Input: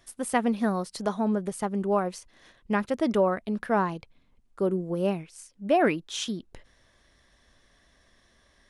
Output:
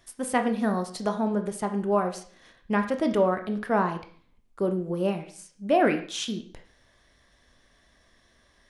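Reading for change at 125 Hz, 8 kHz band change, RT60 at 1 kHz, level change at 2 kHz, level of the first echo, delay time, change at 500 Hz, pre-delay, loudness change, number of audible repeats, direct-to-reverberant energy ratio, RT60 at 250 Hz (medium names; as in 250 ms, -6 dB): +0.5 dB, 0.0 dB, 0.50 s, +1.0 dB, no echo, no echo, +1.0 dB, 16 ms, +1.0 dB, no echo, 6.0 dB, 0.45 s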